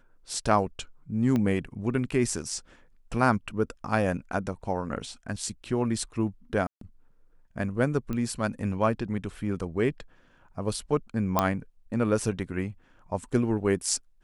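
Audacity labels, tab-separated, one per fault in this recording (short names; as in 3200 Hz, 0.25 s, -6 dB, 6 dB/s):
1.360000	1.360000	pop -16 dBFS
6.670000	6.810000	gap 0.143 s
8.130000	8.130000	pop -20 dBFS
11.390000	11.390000	pop -8 dBFS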